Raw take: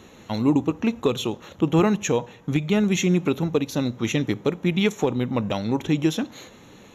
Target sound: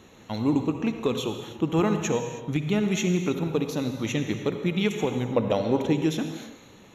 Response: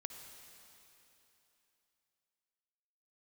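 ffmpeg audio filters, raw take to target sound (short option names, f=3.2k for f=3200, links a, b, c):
-filter_complex "[0:a]asettb=1/sr,asplit=3[a][b][c];[a]atrim=end=5.364[d];[b]atrim=start=5.36:end=5.93,asetpts=PTS-STARTPTS,afade=t=in:d=0.004:c=qsin,afade=t=out:st=0.566:d=0.004:c=qsin,equalizer=f=500:t=o:w=1.1:g=10[e];[c]atrim=start=5.926[f];[d][e]acrossfade=d=0.004:c1=hsin:c2=qsin[g];[g][f]acrossfade=d=0.004:c1=qsin:c2=hsin[h];[1:a]atrim=start_sample=2205,afade=t=out:st=0.38:d=0.01,atrim=end_sample=17199[i];[h][i]afir=irnorm=-1:irlink=0"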